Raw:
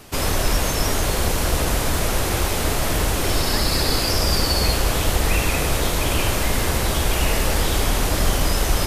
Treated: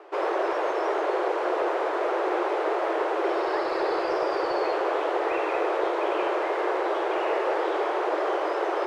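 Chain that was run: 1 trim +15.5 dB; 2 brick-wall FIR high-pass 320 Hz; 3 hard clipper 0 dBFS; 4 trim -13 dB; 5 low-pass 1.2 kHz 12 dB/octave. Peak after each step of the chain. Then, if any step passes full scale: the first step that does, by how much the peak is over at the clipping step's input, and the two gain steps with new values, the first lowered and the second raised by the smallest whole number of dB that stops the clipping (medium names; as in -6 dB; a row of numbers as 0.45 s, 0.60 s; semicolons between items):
+9.0 dBFS, +5.5 dBFS, 0.0 dBFS, -13.0 dBFS, -14.0 dBFS; step 1, 5.5 dB; step 1 +9.5 dB, step 4 -7 dB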